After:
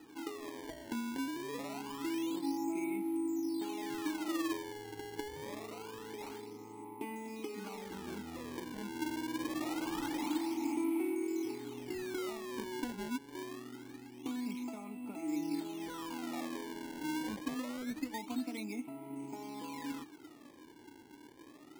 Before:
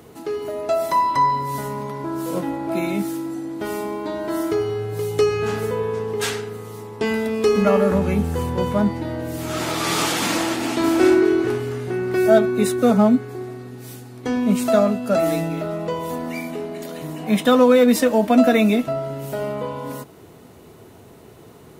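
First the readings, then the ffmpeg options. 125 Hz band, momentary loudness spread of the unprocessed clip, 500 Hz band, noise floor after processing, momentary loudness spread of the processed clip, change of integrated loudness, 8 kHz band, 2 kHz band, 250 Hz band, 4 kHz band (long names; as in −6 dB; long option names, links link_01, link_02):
−27.0 dB, 14 LU, −24.0 dB, −56 dBFS, 11 LU, −19.5 dB, −17.0 dB, −17.5 dB, −16.5 dB, −17.0 dB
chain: -filter_complex "[0:a]equalizer=frequency=180:width_type=o:width=0.77:gain=-5,acrossover=split=1800|3700[link_01][link_02][link_03];[link_01]acompressor=threshold=-28dB:ratio=4[link_04];[link_02]acompressor=threshold=-41dB:ratio=4[link_05];[link_03]acompressor=threshold=-44dB:ratio=4[link_06];[link_04][link_05][link_06]amix=inputs=3:normalize=0,asplit=3[link_07][link_08][link_09];[link_07]bandpass=frequency=300:width_type=q:width=8,volume=0dB[link_10];[link_08]bandpass=frequency=870:width_type=q:width=8,volume=-6dB[link_11];[link_09]bandpass=frequency=2240:width_type=q:width=8,volume=-9dB[link_12];[link_10][link_11][link_12]amix=inputs=3:normalize=0,acrusher=samples=20:mix=1:aa=0.000001:lfo=1:lforange=32:lforate=0.25,volume=1.5dB"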